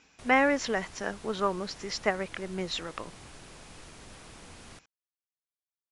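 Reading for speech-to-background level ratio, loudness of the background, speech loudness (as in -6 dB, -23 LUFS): 19.5 dB, -49.5 LUFS, -30.0 LUFS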